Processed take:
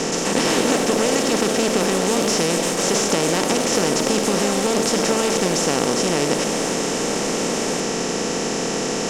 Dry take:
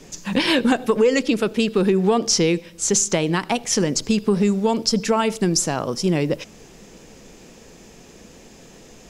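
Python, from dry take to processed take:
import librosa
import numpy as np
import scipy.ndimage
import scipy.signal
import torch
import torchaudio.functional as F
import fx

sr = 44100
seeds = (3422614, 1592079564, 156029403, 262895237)

y = fx.bin_compress(x, sr, power=0.2)
y = fx.echo_pitch(y, sr, ms=150, semitones=3, count=3, db_per_echo=-6.0)
y = y * librosa.db_to_amplitude(-10.0)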